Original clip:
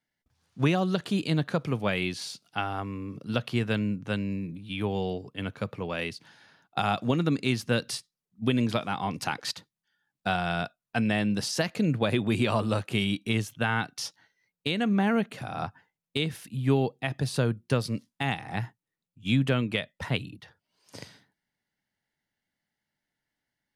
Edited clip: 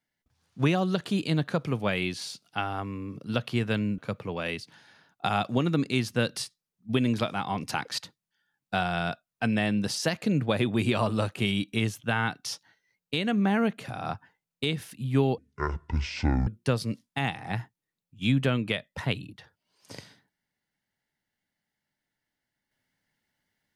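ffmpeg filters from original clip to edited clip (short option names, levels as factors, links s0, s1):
-filter_complex "[0:a]asplit=4[s0][s1][s2][s3];[s0]atrim=end=3.982[s4];[s1]atrim=start=5.508:end=16.914[s5];[s2]atrim=start=16.91:end=17.51,asetpts=PTS-STARTPTS,asetrate=24255,aresample=44100,atrim=end_sample=48109,asetpts=PTS-STARTPTS[s6];[s3]atrim=start=17.506[s7];[s4][s5]acrossfade=d=0.004:c1=hsin:c2=hsin[s8];[s8][s6]acrossfade=d=0.004:c1=hsin:c2=hsin[s9];[s9][s7]acrossfade=d=0.004:c1=hsin:c2=hsin"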